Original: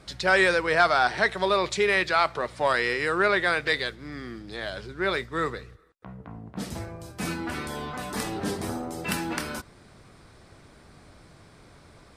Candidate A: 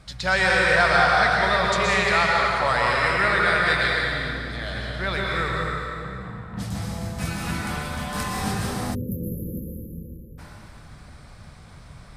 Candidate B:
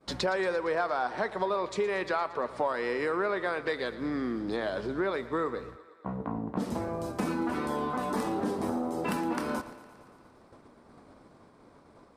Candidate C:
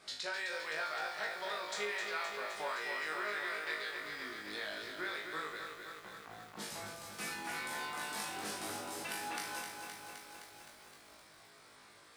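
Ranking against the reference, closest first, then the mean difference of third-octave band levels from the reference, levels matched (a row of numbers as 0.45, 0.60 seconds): B, A, C; 5.5, 7.0, 11.0 decibels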